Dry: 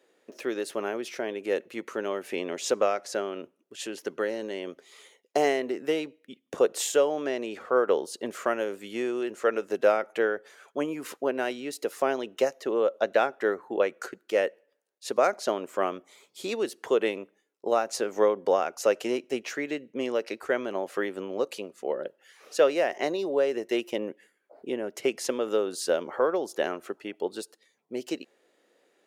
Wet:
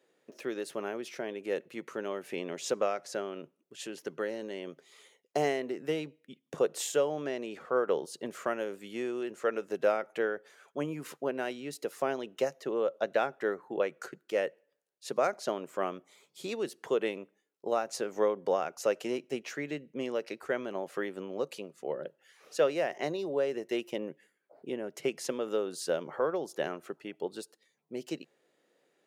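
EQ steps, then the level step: bell 150 Hz +12.5 dB 0.45 oct; -5.5 dB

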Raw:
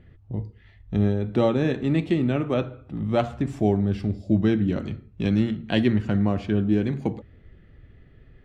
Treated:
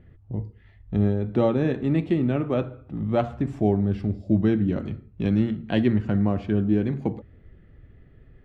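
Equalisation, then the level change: high shelf 2900 Hz -10.5 dB; 0.0 dB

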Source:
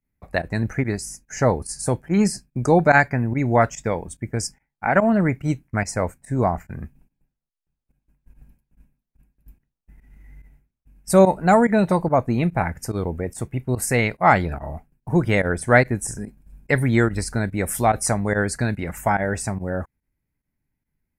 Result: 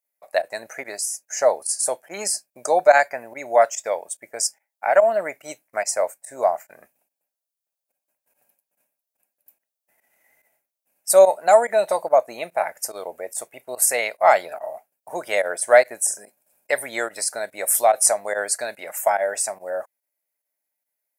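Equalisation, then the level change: resonant high-pass 610 Hz, resonance Q 4.9; high shelf 2300 Hz +12 dB; high shelf 7200 Hz +8.5 dB; -8.5 dB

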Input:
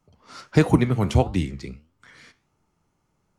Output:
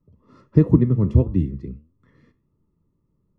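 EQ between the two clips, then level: running mean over 58 samples; +4.5 dB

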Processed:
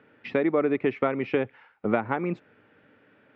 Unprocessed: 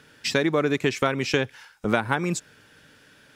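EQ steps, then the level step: speaker cabinet 130–2100 Hz, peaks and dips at 150 Hz -8 dB, 1000 Hz -4 dB, 1600 Hz -9 dB; 0.0 dB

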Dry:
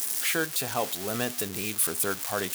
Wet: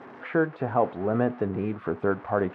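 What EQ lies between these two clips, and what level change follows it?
Bessel low-pass 950 Hz, order 4; +8.0 dB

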